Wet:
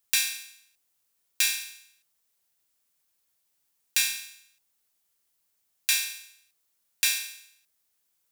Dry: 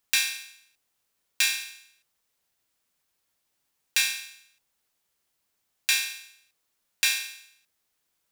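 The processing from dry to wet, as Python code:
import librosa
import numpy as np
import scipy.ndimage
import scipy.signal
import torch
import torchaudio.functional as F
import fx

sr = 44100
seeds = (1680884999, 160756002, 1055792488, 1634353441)

y = fx.high_shelf(x, sr, hz=5700.0, db=9.0)
y = y * librosa.db_to_amplitude(-4.5)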